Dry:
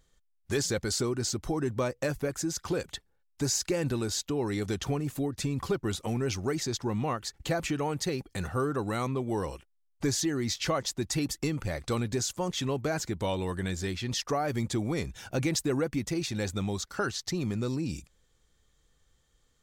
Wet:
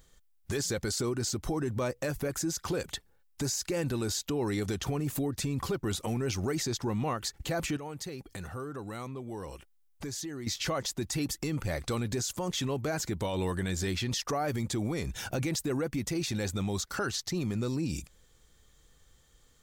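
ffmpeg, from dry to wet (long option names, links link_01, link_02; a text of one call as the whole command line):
ffmpeg -i in.wav -filter_complex "[0:a]asettb=1/sr,asplit=3[link_01][link_02][link_03];[link_01]atrim=end=7.774[link_04];[link_02]atrim=start=7.77:end=10.47,asetpts=PTS-STARTPTS,afade=type=in:duration=0.004:curve=qsin,afade=type=out:start_time=2.696:duration=0.004:curve=qsin,acompressor=threshold=-50dB:ratio=2.5:attack=3.2:release=140:knee=1:detection=peak[link_05];[link_03]atrim=start=10.466[link_06];[link_04][link_05]acrossfade=duration=0.004:curve1=hsin:curve2=qsin[link_07];[link_07][link_06]acrossfade=duration=0.004:curve1=qsin:curve2=hsin,highshelf=frequency=12000:gain=8,alimiter=level_in=5.5dB:limit=-24dB:level=0:latency=1:release=112,volume=-5.5dB,volume=6dB" out.wav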